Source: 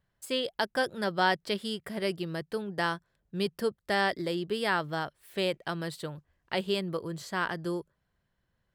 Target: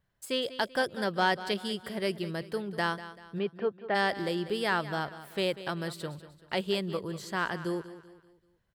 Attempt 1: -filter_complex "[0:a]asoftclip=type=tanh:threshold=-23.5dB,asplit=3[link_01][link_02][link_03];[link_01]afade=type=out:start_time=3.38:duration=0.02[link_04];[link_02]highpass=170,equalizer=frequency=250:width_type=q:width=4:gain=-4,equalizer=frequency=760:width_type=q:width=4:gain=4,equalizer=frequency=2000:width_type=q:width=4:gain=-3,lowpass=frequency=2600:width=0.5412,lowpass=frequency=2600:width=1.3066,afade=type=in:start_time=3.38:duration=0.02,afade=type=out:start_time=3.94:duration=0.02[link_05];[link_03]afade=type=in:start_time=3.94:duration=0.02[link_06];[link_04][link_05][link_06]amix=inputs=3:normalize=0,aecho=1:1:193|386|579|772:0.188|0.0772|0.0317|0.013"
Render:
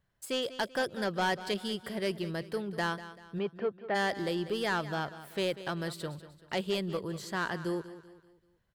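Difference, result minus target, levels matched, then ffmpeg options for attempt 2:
soft clipping: distortion +15 dB
-filter_complex "[0:a]asoftclip=type=tanh:threshold=-12.5dB,asplit=3[link_01][link_02][link_03];[link_01]afade=type=out:start_time=3.38:duration=0.02[link_04];[link_02]highpass=170,equalizer=frequency=250:width_type=q:width=4:gain=-4,equalizer=frequency=760:width_type=q:width=4:gain=4,equalizer=frequency=2000:width_type=q:width=4:gain=-3,lowpass=frequency=2600:width=0.5412,lowpass=frequency=2600:width=1.3066,afade=type=in:start_time=3.38:duration=0.02,afade=type=out:start_time=3.94:duration=0.02[link_05];[link_03]afade=type=in:start_time=3.94:duration=0.02[link_06];[link_04][link_05][link_06]amix=inputs=3:normalize=0,aecho=1:1:193|386|579|772:0.188|0.0772|0.0317|0.013"

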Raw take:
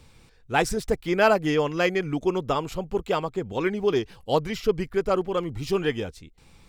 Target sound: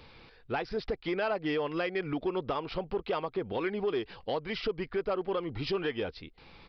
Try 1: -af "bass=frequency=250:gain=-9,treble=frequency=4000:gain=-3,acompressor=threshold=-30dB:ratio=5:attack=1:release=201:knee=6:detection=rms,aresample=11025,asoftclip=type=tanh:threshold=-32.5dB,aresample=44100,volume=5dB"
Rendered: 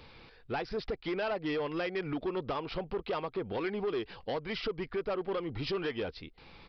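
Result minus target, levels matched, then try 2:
soft clipping: distortion +10 dB
-af "bass=frequency=250:gain=-9,treble=frequency=4000:gain=-3,acompressor=threshold=-30dB:ratio=5:attack=1:release=201:knee=6:detection=rms,aresample=11025,asoftclip=type=tanh:threshold=-25.5dB,aresample=44100,volume=5dB"

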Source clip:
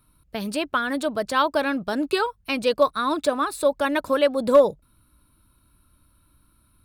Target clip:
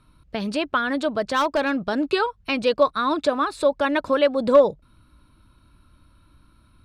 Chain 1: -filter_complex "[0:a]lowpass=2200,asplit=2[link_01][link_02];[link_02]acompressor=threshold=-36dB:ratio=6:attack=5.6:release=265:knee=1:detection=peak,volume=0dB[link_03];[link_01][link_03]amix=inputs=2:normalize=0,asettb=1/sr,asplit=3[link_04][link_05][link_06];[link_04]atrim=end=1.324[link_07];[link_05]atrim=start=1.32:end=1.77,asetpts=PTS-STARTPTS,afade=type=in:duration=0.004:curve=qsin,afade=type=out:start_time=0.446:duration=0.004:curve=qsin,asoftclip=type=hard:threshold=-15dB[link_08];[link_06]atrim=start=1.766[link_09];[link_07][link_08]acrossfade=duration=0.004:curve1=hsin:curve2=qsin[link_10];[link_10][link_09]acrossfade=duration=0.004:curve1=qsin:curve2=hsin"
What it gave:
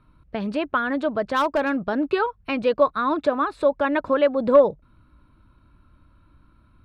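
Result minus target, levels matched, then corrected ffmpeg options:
4,000 Hz band −6.5 dB
-filter_complex "[0:a]lowpass=5200,asplit=2[link_01][link_02];[link_02]acompressor=threshold=-36dB:ratio=6:attack=5.6:release=265:knee=1:detection=peak,volume=0dB[link_03];[link_01][link_03]amix=inputs=2:normalize=0,asettb=1/sr,asplit=3[link_04][link_05][link_06];[link_04]atrim=end=1.324[link_07];[link_05]atrim=start=1.32:end=1.77,asetpts=PTS-STARTPTS,afade=type=in:duration=0.004:curve=qsin,afade=type=out:start_time=0.446:duration=0.004:curve=qsin,asoftclip=type=hard:threshold=-15dB[link_08];[link_06]atrim=start=1.766[link_09];[link_07][link_08]acrossfade=duration=0.004:curve1=hsin:curve2=qsin[link_10];[link_10][link_09]acrossfade=duration=0.004:curve1=qsin:curve2=hsin"

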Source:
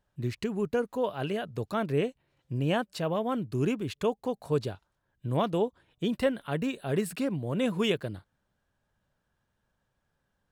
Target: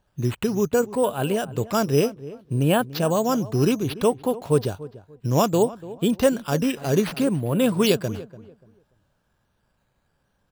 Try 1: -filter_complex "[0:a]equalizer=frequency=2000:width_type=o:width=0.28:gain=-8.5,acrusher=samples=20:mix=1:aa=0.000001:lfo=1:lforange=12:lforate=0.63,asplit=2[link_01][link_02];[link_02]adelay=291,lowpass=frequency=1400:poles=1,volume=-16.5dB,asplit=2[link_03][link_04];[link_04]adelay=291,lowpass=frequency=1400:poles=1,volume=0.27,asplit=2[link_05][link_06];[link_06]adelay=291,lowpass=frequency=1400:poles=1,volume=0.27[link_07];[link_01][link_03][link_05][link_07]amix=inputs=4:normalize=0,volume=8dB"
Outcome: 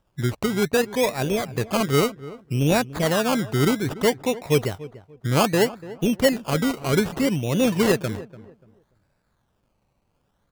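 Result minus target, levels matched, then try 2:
sample-and-hold swept by an LFO: distortion +10 dB
-filter_complex "[0:a]equalizer=frequency=2000:width_type=o:width=0.28:gain=-8.5,acrusher=samples=6:mix=1:aa=0.000001:lfo=1:lforange=3.6:lforate=0.63,asplit=2[link_01][link_02];[link_02]adelay=291,lowpass=frequency=1400:poles=1,volume=-16.5dB,asplit=2[link_03][link_04];[link_04]adelay=291,lowpass=frequency=1400:poles=1,volume=0.27,asplit=2[link_05][link_06];[link_06]adelay=291,lowpass=frequency=1400:poles=1,volume=0.27[link_07];[link_01][link_03][link_05][link_07]amix=inputs=4:normalize=0,volume=8dB"

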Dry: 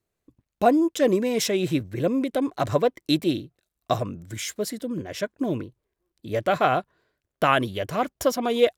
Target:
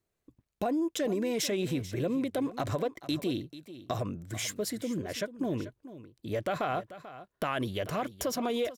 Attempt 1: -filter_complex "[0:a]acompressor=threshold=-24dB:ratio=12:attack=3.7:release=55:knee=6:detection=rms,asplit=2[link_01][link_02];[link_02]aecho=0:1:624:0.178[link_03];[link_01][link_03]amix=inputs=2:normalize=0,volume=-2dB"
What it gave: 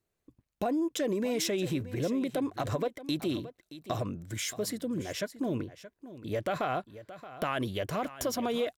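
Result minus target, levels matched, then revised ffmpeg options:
echo 185 ms late
-filter_complex "[0:a]acompressor=threshold=-24dB:ratio=12:attack=3.7:release=55:knee=6:detection=rms,asplit=2[link_01][link_02];[link_02]aecho=0:1:439:0.178[link_03];[link_01][link_03]amix=inputs=2:normalize=0,volume=-2dB"

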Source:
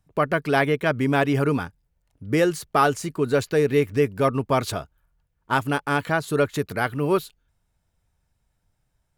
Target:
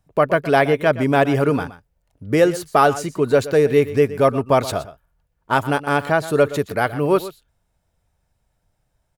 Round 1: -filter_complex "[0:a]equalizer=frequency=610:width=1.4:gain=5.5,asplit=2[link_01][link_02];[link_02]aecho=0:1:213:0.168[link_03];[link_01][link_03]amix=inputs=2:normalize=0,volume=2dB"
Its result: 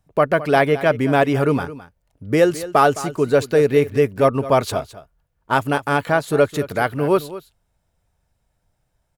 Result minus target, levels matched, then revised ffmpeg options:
echo 92 ms late
-filter_complex "[0:a]equalizer=frequency=610:width=1.4:gain=5.5,asplit=2[link_01][link_02];[link_02]aecho=0:1:121:0.168[link_03];[link_01][link_03]amix=inputs=2:normalize=0,volume=2dB"

